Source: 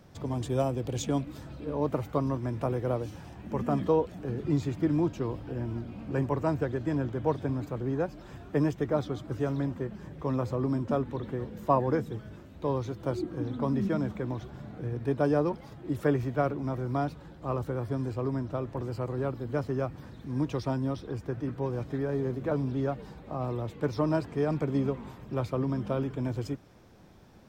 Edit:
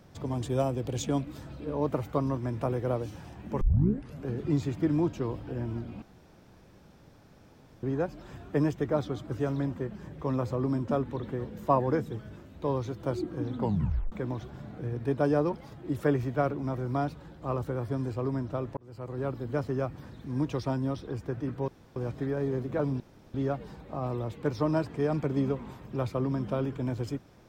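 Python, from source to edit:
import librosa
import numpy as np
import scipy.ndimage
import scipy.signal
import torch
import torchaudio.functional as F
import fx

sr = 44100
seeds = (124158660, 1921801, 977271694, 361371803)

y = fx.edit(x, sr, fx.tape_start(start_s=3.61, length_s=0.66),
    fx.room_tone_fill(start_s=6.02, length_s=1.81),
    fx.tape_stop(start_s=13.59, length_s=0.53),
    fx.fade_in_span(start_s=18.77, length_s=0.55),
    fx.insert_room_tone(at_s=21.68, length_s=0.28),
    fx.insert_room_tone(at_s=22.72, length_s=0.34), tone=tone)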